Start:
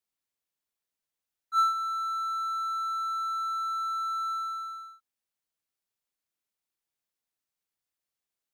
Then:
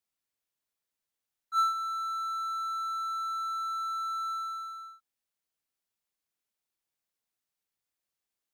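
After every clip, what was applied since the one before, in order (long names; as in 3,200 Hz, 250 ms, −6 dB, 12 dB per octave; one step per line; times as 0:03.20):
dynamic equaliser 1,800 Hz, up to −3 dB, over −42 dBFS, Q 0.86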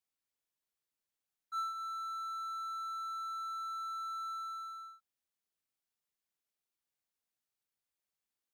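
downward compressor 2 to 1, threshold −36 dBFS, peak gain reduction 7.5 dB
level −4 dB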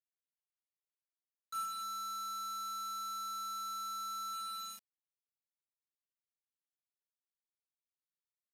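bit reduction 7 bits
downsampling to 32,000 Hz
level −2 dB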